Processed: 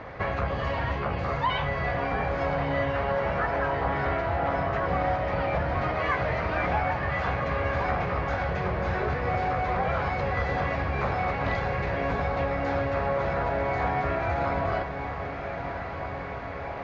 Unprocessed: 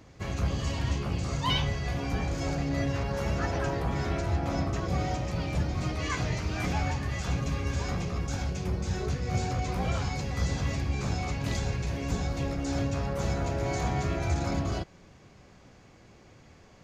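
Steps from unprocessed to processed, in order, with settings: LPF 4000 Hz 24 dB/oct; band shelf 1000 Hz +12 dB 2.5 oct; compressor 3:1, threshold -36 dBFS, peak gain reduction 15.5 dB; on a send: diffused feedback echo 1.283 s, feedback 73%, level -9 dB; on the sum: gain +7.5 dB

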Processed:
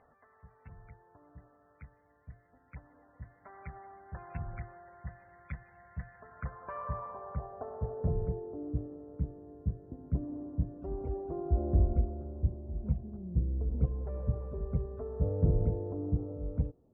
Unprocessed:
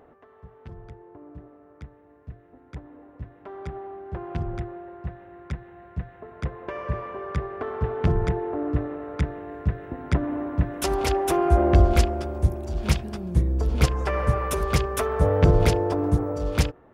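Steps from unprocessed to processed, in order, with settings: bell 350 Hz -14 dB 0.67 oct; loudest bins only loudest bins 64; low-pass sweep 2300 Hz -> 360 Hz, 5.78–8.58; gain -9 dB

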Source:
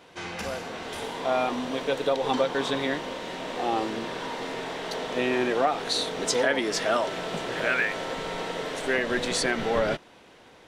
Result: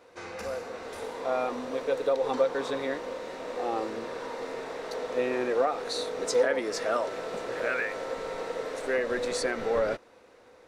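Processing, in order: thirty-one-band EQ 160 Hz -11 dB, 500 Hz +10 dB, 1250 Hz +4 dB, 3150 Hz -9 dB; gain -6 dB

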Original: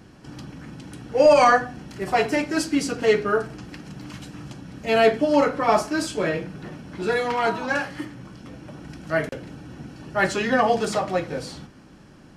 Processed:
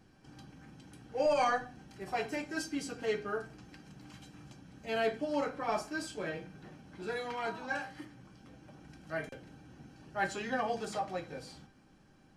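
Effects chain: resonator 790 Hz, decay 0.19 s, harmonics all, mix 80%; gain -1.5 dB

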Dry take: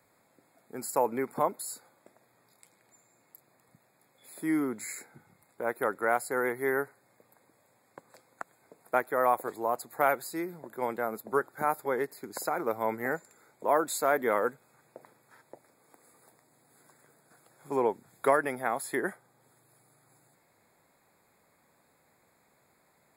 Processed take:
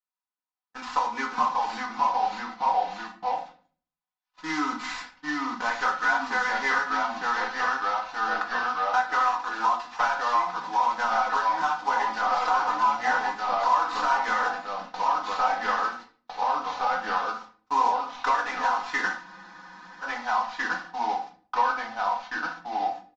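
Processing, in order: CVSD 32 kbps; resonant low shelf 690 Hz -12 dB, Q 3; notch 2200 Hz, Q 17; early reflections 17 ms -13 dB, 56 ms -16.5 dB; echoes that change speed 0.528 s, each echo -1 st, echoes 3; gate -49 dBFS, range -44 dB; compressor 6:1, threshold -30 dBFS, peak gain reduction 12 dB; comb 4 ms, depth 89%; reverb RT60 0.45 s, pre-delay 6 ms, DRR 1.5 dB; spectral freeze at 19.25, 0.78 s; gain +5 dB

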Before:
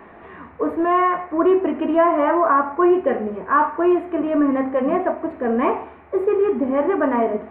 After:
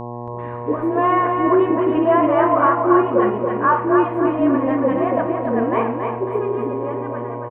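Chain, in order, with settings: ending faded out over 1.98 s; gate with hold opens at -30 dBFS; dispersion highs, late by 0.138 s, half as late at 390 Hz; buzz 120 Hz, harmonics 9, -30 dBFS -2 dB/oct; feedback echo 0.277 s, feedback 41%, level -5 dB

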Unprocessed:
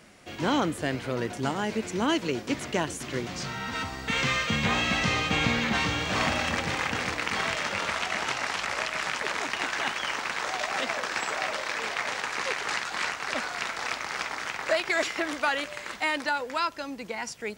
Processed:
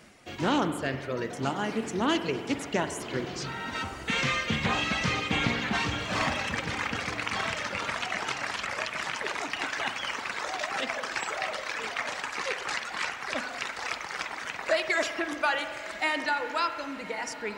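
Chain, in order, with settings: reverb removal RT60 2 s; on a send: diffused feedback echo 1.087 s, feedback 45%, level -14.5 dB; on the sum: spring tank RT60 1.7 s, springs 44 ms, chirp 70 ms, DRR 8 dB; Doppler distortion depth 0.27 ms

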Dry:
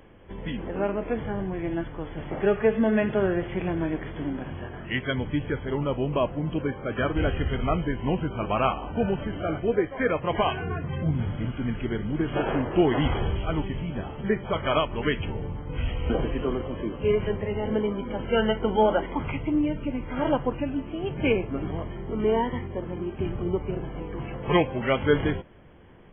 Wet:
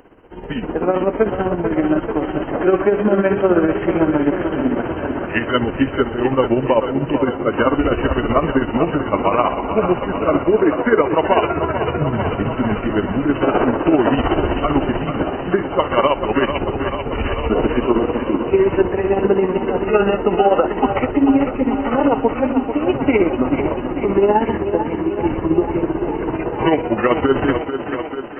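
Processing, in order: limiter -17.5 dBFS, peak gain reduction 9 dB; tremolo 17 Hz, depth 61%; varispeed -8%; band shelf 580 Hz +8.5 dB 2.8 oct; thinning echo 0.441 s, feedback 73%, high-pass 160 Hz, level -8 dB; AGC gain up to 7.5 dB; high shelf 2400 Hz +9.5 dB

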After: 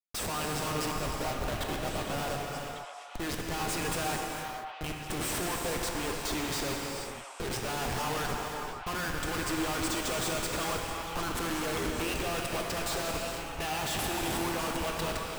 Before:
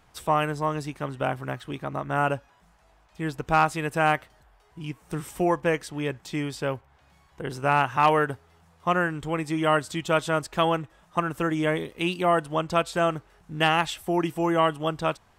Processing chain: HPF 58 Hz 12 dB/oct; tone controls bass -6 dB, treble +11 dB; harmonic-percussive split harmonic -5 dB; bell 200 Hz -7.5 dB 1.1 oct; in parallel at -1 dB: compressor 8:1, threshold -41 dBFS, peak gain reduction 23 dB; on the sum: Schmitt trigger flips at -35.5 dBFS; on a send: delay with a stepping band-pass 0.575 s, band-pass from 980 Hz, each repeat 1.4 oct, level -5 dB; on the sum: non-linear reverb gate 0.5 s flat, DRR 0 dB; gain -5.5 dB

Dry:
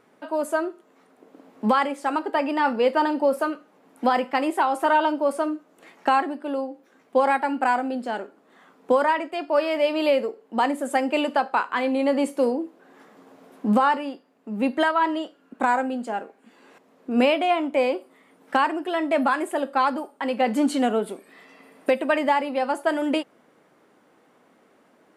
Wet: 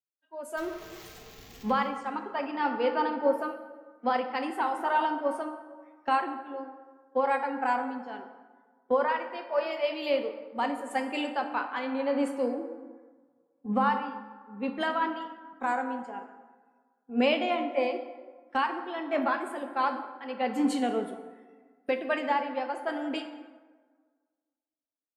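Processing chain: 0.57–1.71 zero-crossing step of -28.5 dBFS; spectral noise reduction 18 dB; plate-style reverb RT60 2.7 s, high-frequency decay 0.45×, DRR 5 dB; three-band expander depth 70%; gain -8 dB

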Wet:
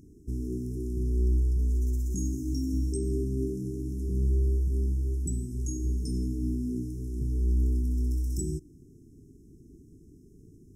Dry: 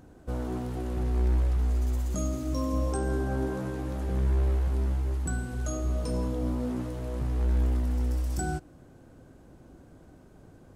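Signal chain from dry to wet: brick-wall FIR band-stop 450–5100 Hz

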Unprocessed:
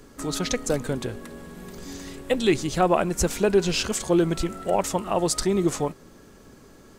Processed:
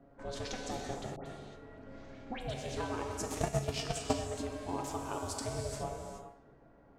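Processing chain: ring modulator 260 Hz; low-pass opened by the level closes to 1300 Hz, open at -23 dBFS; compressor, threshold -26 dBFS, peak gain reduction 10 dB; non-linear reverb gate 0.45 s flat, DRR 1 dB; 3.28–4.14 transient shaper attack +11 dB, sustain -6 dB; added harmonics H 7 -32 dB, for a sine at -5.5 dBFS; resonator 140 Hz, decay 0.43 s, harmonics all, mix 70%; 1.16–2.54 dispersion highs, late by 97 ms, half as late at 1700 Hz

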